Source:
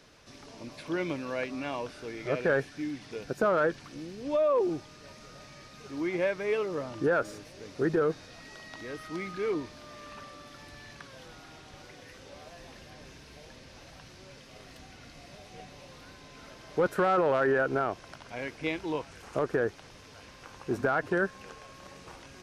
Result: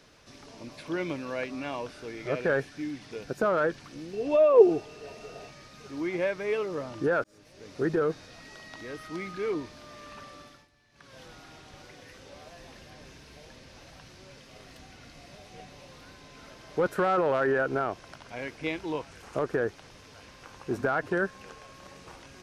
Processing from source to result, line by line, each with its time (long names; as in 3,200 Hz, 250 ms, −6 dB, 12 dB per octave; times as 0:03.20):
0:04.13–0:05.51: hollow resonant body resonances 440/680/2,700 Hz, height 16 dB
0:07.24–0:07.76: fade in
0:10.41–0:11.19: duck −18 dB, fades 0.27 s